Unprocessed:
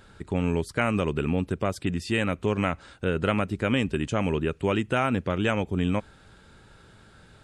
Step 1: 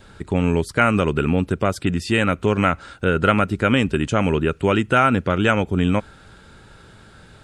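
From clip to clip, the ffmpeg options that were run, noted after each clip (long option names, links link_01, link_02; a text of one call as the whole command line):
ffmpeg -i in.wav -af "adynamicequalizer=threshold=0.00447:dfrequency=1400:dqfactor=7.2:tfrequency=1400:tqfactor=7.2:attack=5:release=100:ratio=0.375:range=4:mode=boostabove:tftype=bell,volume=6.5dB" out.wav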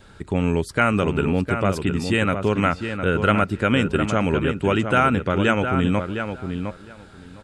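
ffmpeg -i in.wav -filter_complex "[0:a]asplit=2[link_01][link_02];[link_02]adelay=709,lowpass=frequency=2900:poles=1,volume=-7dB,asplit=2[link_03][link_04];[link_04]adelay=709,lowpass=frequency=2900:poles=1,volume=0.16,asplit=2[link_05][link_06];[link_06]adelay=709,lowpass=frequency=2900:poles=1,volume=0.16[link_07];[link_01][link_03][link_05][link_07]amix=inputs=4:normalize=0,volume=-2dB" out.wav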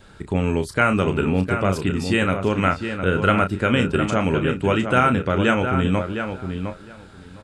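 ffmpeg -i in.wav -filter_complex "[0:a]asplit=2[link_01][link_02];[link_02]adelay=32,volume=-8.5dB[link_03];[link_01][link_03]amix=inputs=2:normalize=0" out.wav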